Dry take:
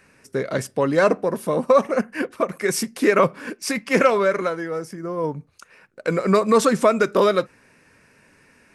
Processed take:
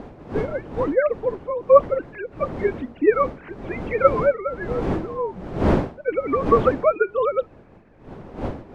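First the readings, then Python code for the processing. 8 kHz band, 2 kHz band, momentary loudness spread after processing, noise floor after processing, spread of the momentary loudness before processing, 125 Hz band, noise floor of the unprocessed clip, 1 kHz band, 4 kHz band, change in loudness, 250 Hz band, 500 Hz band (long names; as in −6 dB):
below −25 dB, −5.5 dB, 15 LU, −48 dBFS, 12 LU, +1.5 dB, −57 dBFS, −1.0 dB, below −10 dB, −1.0 dB, −3.0 dB, 0.0 dB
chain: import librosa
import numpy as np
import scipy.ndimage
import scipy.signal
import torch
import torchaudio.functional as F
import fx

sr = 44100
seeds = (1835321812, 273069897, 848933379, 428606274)

y = fx.sine_speech(x, sr)
y = fx.dmg_wind(y, sr, seeds[0], corner_hz=430.0, level_db=-28.0)
y = y * librosa.db_to_amplitude(-1.5)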